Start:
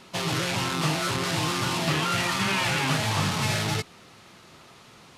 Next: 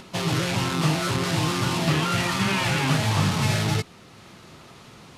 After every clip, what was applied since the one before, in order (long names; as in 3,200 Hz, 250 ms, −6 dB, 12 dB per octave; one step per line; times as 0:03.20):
low-shelf EQ 380 Hz +6 dB
upward compression, threshold −41 dBFS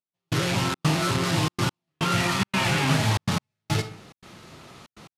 on a send at −10 dB: convolution reverb RT60 0.55 s, pre-delay 4 ms
on the sum: gate pattern "...xxxx.xxxxxx.x" 142 BPM −60 dB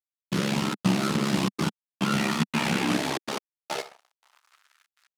dead-zone distortion −42 dBFS
ring modulation 34 Hz
high-pass filter sweep 200 Hz → 1,500 Hz, 0:02.63–0:04.75